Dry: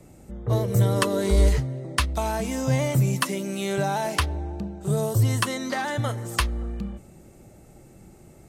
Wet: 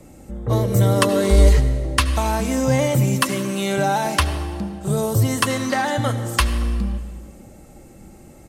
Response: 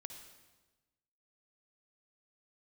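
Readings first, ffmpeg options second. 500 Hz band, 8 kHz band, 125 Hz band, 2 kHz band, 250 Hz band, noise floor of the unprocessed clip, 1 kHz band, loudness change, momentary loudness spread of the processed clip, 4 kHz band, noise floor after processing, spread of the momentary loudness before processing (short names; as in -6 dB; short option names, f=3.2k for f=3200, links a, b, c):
+5.5 dB, +5.5 dB, +4.0 dB, +5.0 dB, +6.0 dB, -50 dBFS, +6.0 dB, +5.5 dB, 11 LU, +5.5 dB, -44 dBFS, 11 LU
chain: -filter_complex "[0:a]aecho=1:1:3.7:0.31,asplit=2[a][b];[1:a]atrim=start_sample=2205,asetrate=33075,aresample=44100[c];[b][c]afir=irnorm=-1:irlink=0,volume=2dB[d];[a][d]amix=inputs=2:normalize=0"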